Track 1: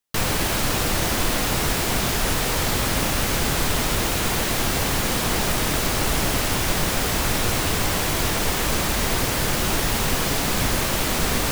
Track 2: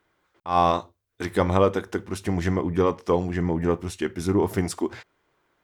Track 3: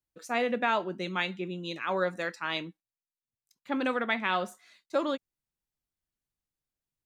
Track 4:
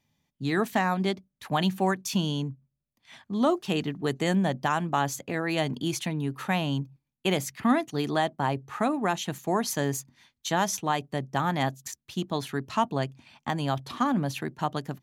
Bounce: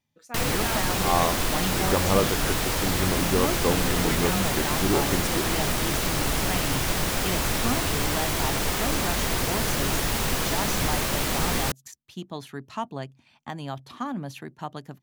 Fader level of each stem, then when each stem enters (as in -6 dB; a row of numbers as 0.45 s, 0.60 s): -3.5 dB, -3.5 dB, -7.0 dB, -6.0 dB; 0.20 s, 0.55 s, 0.00 s, 0.00 s